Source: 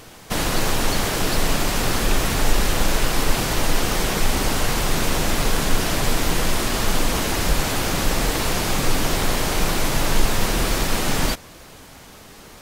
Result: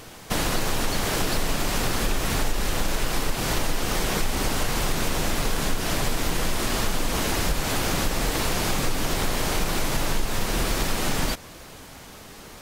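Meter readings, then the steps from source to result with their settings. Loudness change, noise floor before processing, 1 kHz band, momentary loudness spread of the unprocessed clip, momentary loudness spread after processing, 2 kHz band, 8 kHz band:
−4.0 dB, −43 dBFS, −4.0 dB, 1 LU, 3 LU, −4.0 dB, −4.0 dB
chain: downward compressor 4 to 1, threshold −20 dBFS, peak gain reduction 9 dB

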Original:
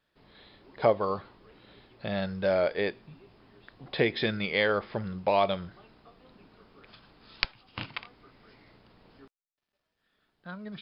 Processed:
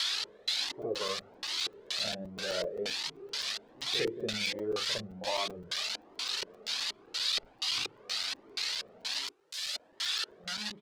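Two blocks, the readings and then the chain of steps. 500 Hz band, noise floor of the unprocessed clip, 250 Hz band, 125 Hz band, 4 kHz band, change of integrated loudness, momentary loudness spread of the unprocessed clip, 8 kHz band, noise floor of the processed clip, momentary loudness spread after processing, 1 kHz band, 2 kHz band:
−8.5 dB, −83 dBFS, −8.5 dB, −11.5 dB, +9.0 dB, −4.0 dB, 15 LU, can't be measured, −60 dBFS, 5 LU, −9.0 dB, −3.5 dB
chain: spike at every zero crossing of −14 dBFS
backwards echo 57 ms −7.5 dB
brickwall limiter −13.5 dBFS, peak gain reduction 9.5 dB
mains-hum notches 50/100/150/200/250/300/350 Hz
double-tracking delay 38 ms −12 dB
dynamic equaliser 890 Hz, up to −5 dB, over −38 dBFS, Q 1.8
auto-filter low-pass square 2.1 Hz 400–4,300 Hz
low-shelf EQ 130 Hz −11.5 dB
regular buffer underruns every 0.13 s, samples 256, zero, from 0:00.69
flanger whose copies keep moving one way rising 1.3 Hz
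level −1.5 dB

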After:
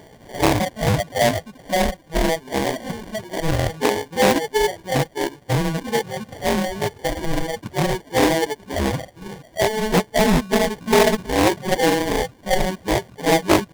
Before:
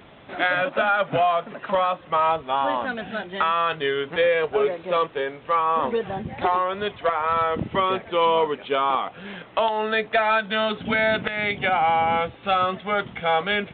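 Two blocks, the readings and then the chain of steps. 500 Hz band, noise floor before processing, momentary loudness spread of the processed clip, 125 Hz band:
+2.5 dB, −46 dBFS, 9 LU, +12.5 dB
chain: harmonic-percussive split with one part muted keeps harmonic
reverb reduction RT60 1.7 s
high shelf with overshoot 1,700 Hz +7.5 dB, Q 1.5
sample-rate reduction 1,300 Hz, jitter 0%
highs frequency-modulated by the lows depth 0.5 ms
level +4 dB

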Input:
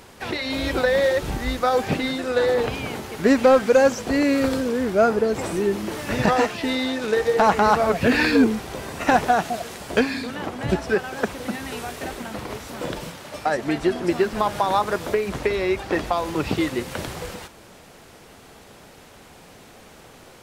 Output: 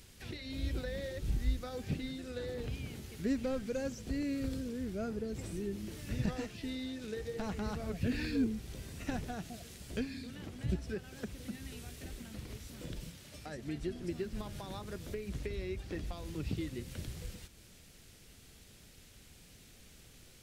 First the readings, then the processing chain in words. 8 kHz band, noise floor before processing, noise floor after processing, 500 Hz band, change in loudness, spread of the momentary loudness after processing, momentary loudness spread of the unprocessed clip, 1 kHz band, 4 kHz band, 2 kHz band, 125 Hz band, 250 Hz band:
−14.5 dB, −47 dBFS, −58 dBFS, −21.5 dB, −17.5 dB, 21 LU, 14 LU, −28.0 dB, −17.0 dB, −22.0 dB, −7.5 dB, −14.5 dB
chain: guitar amp tone stack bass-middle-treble 10-0-1
one half of a high-frequency compander encoder only
level +4 dB

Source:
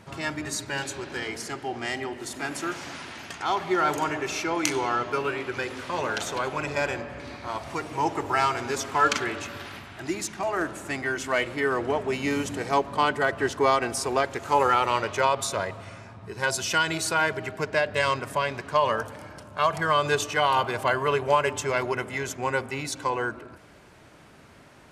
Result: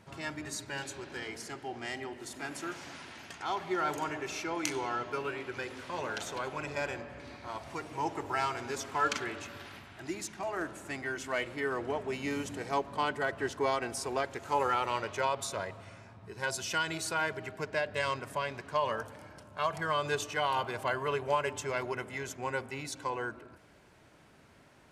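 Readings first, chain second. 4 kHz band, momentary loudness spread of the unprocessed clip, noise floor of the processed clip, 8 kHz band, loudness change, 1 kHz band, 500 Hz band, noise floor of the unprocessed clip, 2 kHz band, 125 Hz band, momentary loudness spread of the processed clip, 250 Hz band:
−8.0 dB, 11 LU, −59 dBFS, −8.0 dB, −8.0 dB, −8.5 dB, −8.0 dB, −51 dBFS, −8.0 dB, −8.0 dB, 11 LU, −8.0 dB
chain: notch filter 1,200 Hz, Q 25
level −8 dB

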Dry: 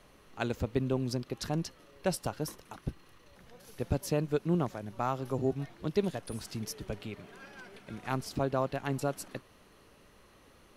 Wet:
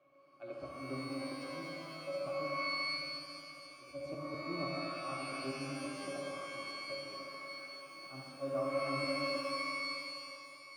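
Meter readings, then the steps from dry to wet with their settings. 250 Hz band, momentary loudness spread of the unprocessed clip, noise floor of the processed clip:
−8.5 dB, 14 LU, −55 dBFS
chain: high-pass filter 430 Hz 12 dB per octave
resonances in every octave C#, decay 0.16 s
feedback echo with a low-pass in the loop 70 ms, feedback 77%, low-pass 2,000 Hz, level −9.5 dB
volume swells 134 ms
reverb with rising layers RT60 2.6 s, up +12 semitones, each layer −2 dB, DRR 0.5 dB
level +7.5 dB

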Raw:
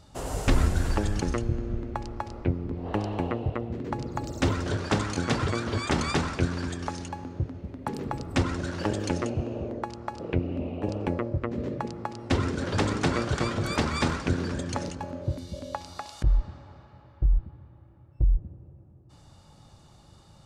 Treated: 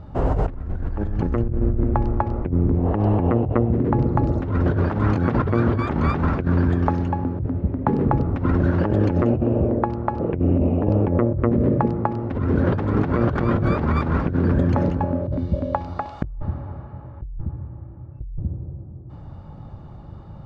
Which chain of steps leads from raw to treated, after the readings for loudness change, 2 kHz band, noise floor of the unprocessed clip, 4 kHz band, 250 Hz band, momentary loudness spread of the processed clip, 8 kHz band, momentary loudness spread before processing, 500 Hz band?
+8.0 dB, +0.5 dB, −54 dBFS, below −10 dB, +9.5 dB, 17 LU, below −20 dB, 9 LU, +8.0 dB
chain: low-pass filter 1,400 Hz 12 dB per octave
low-shelf EQ 280 Hz +6.5 dB
compressor whose output falls as the input rises −27 dBFS, ratio −1
level +6.5 dB

